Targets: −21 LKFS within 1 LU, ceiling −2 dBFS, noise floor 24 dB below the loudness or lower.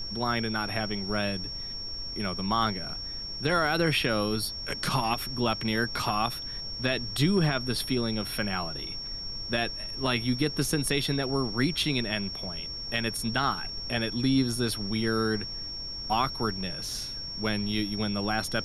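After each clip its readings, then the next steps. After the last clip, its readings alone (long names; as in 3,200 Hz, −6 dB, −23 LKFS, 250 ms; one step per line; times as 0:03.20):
interfering tone 5,500 Hz; level of the tone −35 dBFS; background noise floor −37 dBFS; target noise floor −53 dBFS; integrated loudness −28.5 LKFS; sample peak −12.5 dBFS; target loudness −21.0 LKFS
→ notch filter 5,500 Hz, Q 30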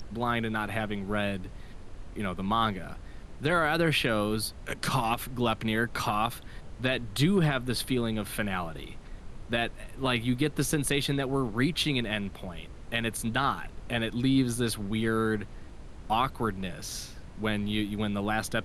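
interfering tone none found; background noise floor −45 dBFS; target noise floor −54 dBFS
→ noise reduction from a noise print 9 dB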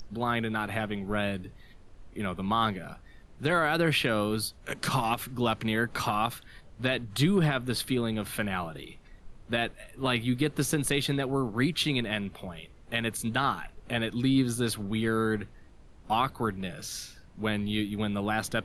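background noise floor −53 dBFS; target noise floor −54 dBFS
→ noise reduction from a noise print 6 dB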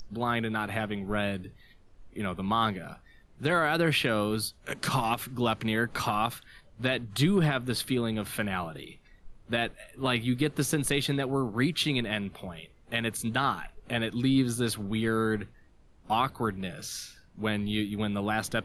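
background noise floor −58 dBFS; integrated loudness −29.5 LKFS; sample peak −12.5 dBFS; target loudness −21.0 LKFS
→ level +8.5 dB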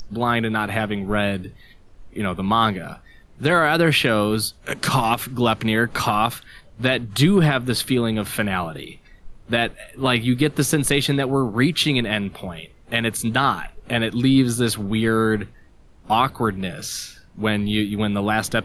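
integrated loudness −21.0 LKFS; sample peak −4.0 dBFS; background noise floor −50 dBFS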